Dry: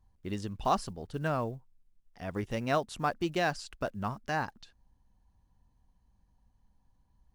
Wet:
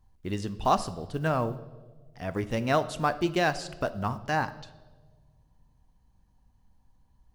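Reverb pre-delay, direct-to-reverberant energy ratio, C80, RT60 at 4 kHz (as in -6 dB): 7 ms, 12.0 dB, 17.5 dB, 1.2 s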